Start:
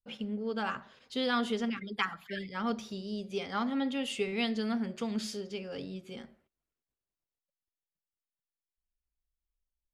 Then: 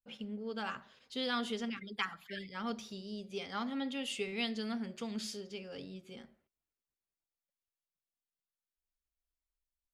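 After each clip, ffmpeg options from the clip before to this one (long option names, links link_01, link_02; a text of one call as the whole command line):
ffmpeg -i in.wav -af "adynamicequalizer=threshold=0.00501:dfrequency=2100:dqfactor=0.7:tfrequency=2100:tqfactor=0.7:attack=5:release=100:ratio=0.375:range=2.5:mode=boostabove:tftype=highshelf,volume=-6dB" out.wav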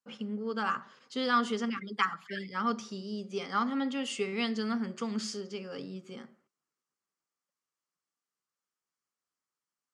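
ffmpeg -i in.wav -af "highpass=frequency=140:width=0.5412,highpass=frequency=140:width=1.3066,equalizer=frequency=650:width_type=q:width=4:gain=-5,equalizer=frequency=1200:width_type=q:width=4:gain=8,equalizer=frequency=2500:width_type=q:width=4:gain=-5,equalizer=frequency=3700:width_type=q:width=4:gain=-9,lowpass=frequency=8400:width=0.5412,lowpass=frequency=8400:width=1.3066,volume=6dB" out.wav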